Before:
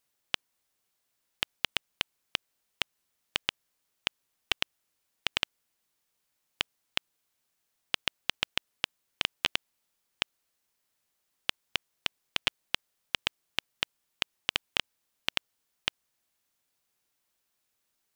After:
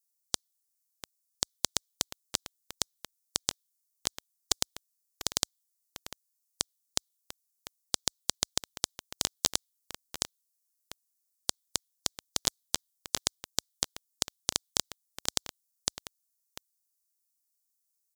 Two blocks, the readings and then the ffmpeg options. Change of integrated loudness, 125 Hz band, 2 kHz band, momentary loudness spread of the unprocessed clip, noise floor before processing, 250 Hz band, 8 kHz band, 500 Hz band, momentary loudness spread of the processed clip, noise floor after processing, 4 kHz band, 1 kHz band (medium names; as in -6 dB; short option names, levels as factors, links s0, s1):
+0.5 dB, +4.5 dB, -10.5 dB, 5 LU, -79 dBFS, +4.0 dB, +16.0 dB, +2.5 dB, 21 LU, -80 dBFS, -2.0 dB, -1.0 dB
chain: -af "afftdn=nr=16:nf=-53,highpass=44,adynamicequalizer=threshold=0.00316:dfrequency=2300:dqfactor=2.1:tfrequency=2300:tqfactor=2.1:attack=5:release=100:ratio=0.375:range=1.5:mode=boostabove:tftype=bell,aecho=1:1:695:0.168,aexciter=amount=14.2:drive=9.3:freq=4200,aeval=exprs='2.82*(cos(1*acos(clip(val(0)/2.82,-1,1)))-cos(1*PI/2))+0.447*(cos(3*acos(clip(val(0)/2.82,-1,1)))-cos(3*PI/2))+0.355*(cos(8*acos(clip(val(0)/2.82,-1,1)))-cos(8*PI/2))':c=same,volume=0.316"